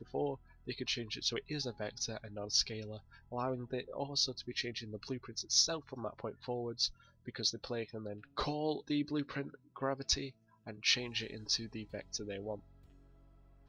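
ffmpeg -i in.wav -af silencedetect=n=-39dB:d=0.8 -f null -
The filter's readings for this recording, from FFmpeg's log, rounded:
silence_start: 12.55
silence_end: 13.68 | silence_duration: 1.13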